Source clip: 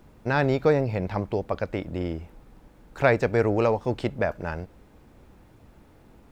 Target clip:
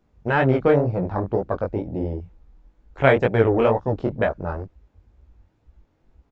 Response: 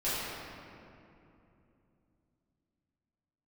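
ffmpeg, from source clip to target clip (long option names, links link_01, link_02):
-af "aresample=16000,aresample=44100,afwtdn=0.02,flanger=delay=15.5:depth=7.1:speed=2.1,volume=7dB"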